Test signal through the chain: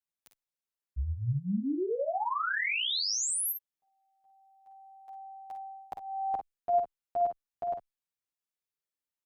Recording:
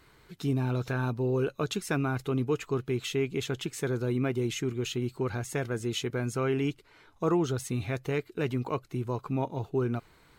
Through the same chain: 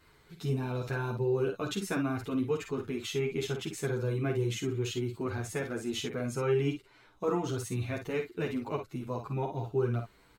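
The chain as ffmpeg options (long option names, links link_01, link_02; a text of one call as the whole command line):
ffmpeg -i in.wav -filter_complex "[0:a]aecho=1:1:50|60:0.422|0.237,asplit=2[link_01][link_02];[link_02]adelay=9.1,afreqshift=-0.35[link_03];[link_01][link_03]amix=inputs=2:normalize=1" out.wav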